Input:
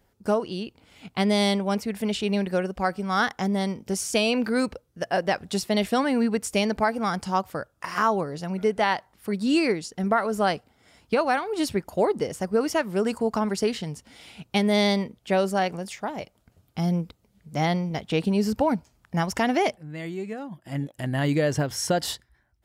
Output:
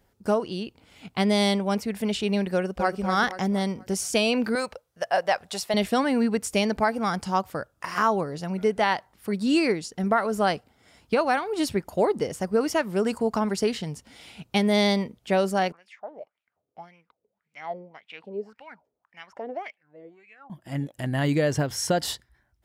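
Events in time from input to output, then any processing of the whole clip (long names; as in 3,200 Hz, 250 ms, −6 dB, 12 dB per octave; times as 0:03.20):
0:02.55–0:03.00: delay throw 240 ms, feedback 40%, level −6 dB
0:04.55–0:05.74: low shelf with overshoot 440 Hz −10.5 dB, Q 1.5
0:15.72–0:20.50: LFO wah 1.8 Hz 430–2,500 Hz, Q 5.4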